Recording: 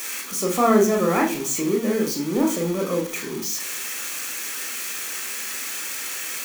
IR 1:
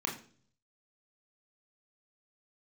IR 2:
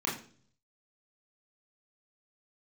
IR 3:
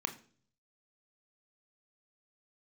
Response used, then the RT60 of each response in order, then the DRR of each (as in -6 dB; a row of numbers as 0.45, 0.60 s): 1; 0.45, 0.45, 0.45 s; 0.5, -4.0, 7.5 dB